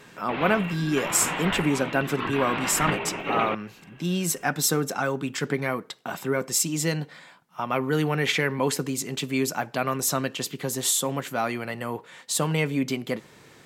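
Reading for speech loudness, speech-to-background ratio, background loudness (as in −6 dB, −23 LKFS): −26.0 LKFS, 4.0 dB, −30.0 LKFS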